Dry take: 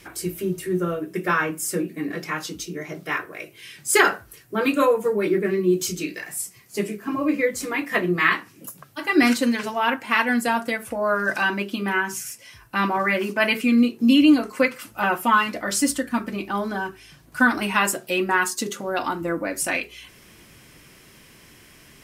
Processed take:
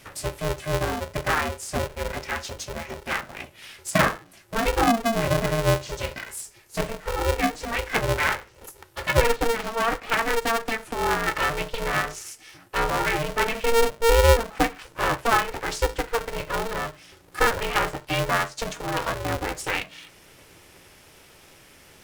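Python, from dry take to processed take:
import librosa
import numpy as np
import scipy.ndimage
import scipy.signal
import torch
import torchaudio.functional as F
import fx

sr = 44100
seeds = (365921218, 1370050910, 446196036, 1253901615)

y = fx.env_lowpass_down(x, sr, base_hz=1600.0, full_db=-16.0)
y = y * np.sign(np.sin(2.0 * np.pi * 230.0 * np.arange(len(y)) / sr))
y = y * 10.0 ** (-1.5 / 20.0)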